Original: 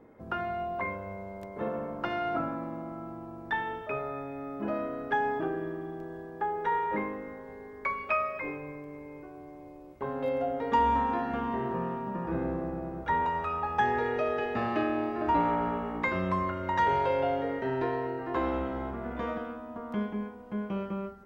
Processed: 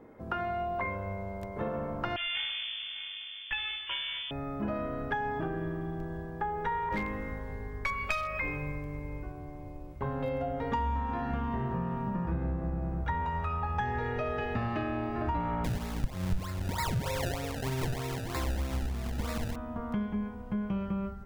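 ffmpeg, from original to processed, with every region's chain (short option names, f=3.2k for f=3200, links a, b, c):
-filter_complex "[0:a]asettb=1/sr,asplit=3[a][b][c];[a]atrim=end=2.164[d];[b]atrim=start=2.16:end=4.31,asetpts=PTS-STARTPTS,afade=t=in:d=0.004:c=qsin,afade=t=out:st=2.146:d=0.004:c=qsin,aeval=exprs='max(val(0),0)':c=same,lowpass=f=3k:t=q:w=0.5098,lowpass=f=3k:t=q:w=0.6013,lowpass=f=3k:t=q:w=0.9,lowpass=f=3k:t=q:w=2.563,afreqshift=-3500[e];[c]atrim=start=4.306[f];[d][e]acrossfade=d=0.004:c1=hsin:c2=qsin[g];[g][f]acrossfade=d=0.004:c1=qsin:c2=hsin,asettb=1/sr,asplit=3[h][i][j];[h]atrim=end=6.894[k];[i]atrim=start=6.89:end=9.32,asetpts=PTS-STARTPTS,afade=t=in:d=0.004:c=qsin,afade=t=out:st=2.426:d=0.004:c=qsin,aeval=exprs='val(0)+0.00141*(sin(2*PI*50*n/s)+sin(2*PI*2*50*n/s)/2+sin(2*PI*3*50*n/s)/3+sin(2*PI*4*50*n/s)/4+sin(2*PI*5*50*n/s)/5)':c=same,aeval=exprs='clip(val(0),-1,0.0501)':c=same,adynamicequalizer=threshold=0.00631:dfrequency=1600:dqfactor=0.7:tfrequency=1600:tqfactor=0.7:attack=5:release=100:ratio=0.375:range=3.5:mode=boostabove:tftype=highshelf[l];[j]atrim=start=9.316[m];[k][l]acrossfade=d=0.004:c1=hsin:c2=qsin[n];[n][m]acrossfade=d=0.004:c1=qsin:c2=hsin,asettb=1/sr,asplit=3[o][p][q];[o]atrim=end=15.644[r];[p]atrim=start=15.64:end=19.56,asetpts=PTS-STARTPTS,afade=t=in:d=0.004:c=qsin,afade=t=out:st=3.916:d=0.004:c=qsin,tremolo=f=1.3:d=0.43,acrusher=samples=28:mix=1:aa=0.000001:lfo=1:lforange=28:lforate=3.2[s];[q]atrim=start=19.556[t];[r][s]acrossfade=d=0.004:c1=hsin:c2=qsin[u];[u][t]acrossfade=d=0.004:c1=qsin:c2=hsin,asubboost=boost=6.5:cutoff=130,acompressor=threshold=-32dB:ratio=4,volume=2.5dB"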